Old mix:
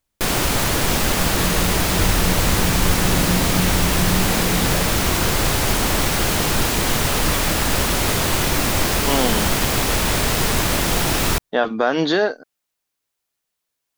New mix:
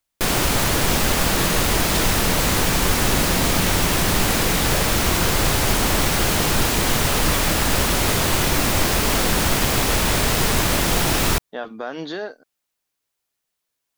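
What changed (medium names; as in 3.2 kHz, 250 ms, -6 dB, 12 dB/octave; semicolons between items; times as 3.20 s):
speech -11.5 dB; second sound: add tilt EQ +3.5 dB/octave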